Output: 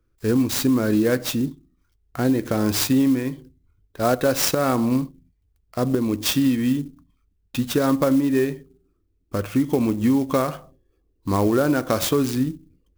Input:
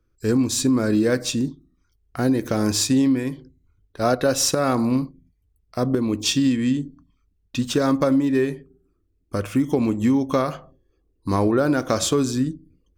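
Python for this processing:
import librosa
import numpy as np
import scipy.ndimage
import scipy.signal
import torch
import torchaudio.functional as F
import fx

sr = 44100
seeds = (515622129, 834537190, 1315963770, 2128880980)

y = fx.clock_jitter(x, sr, seeds[0], jitter_ms=0.029)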